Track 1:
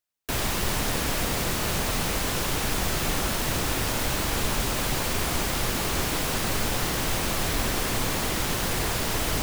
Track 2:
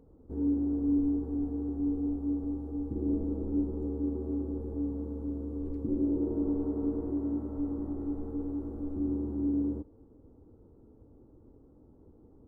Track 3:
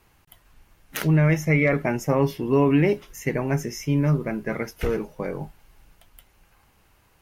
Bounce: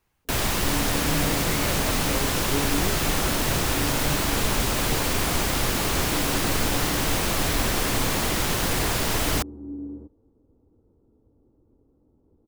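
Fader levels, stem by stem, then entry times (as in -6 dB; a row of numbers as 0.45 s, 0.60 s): +2.5 dB, -5.5 dB, -13.0 dB; 0.00 s, 0.25 s, 0.00 s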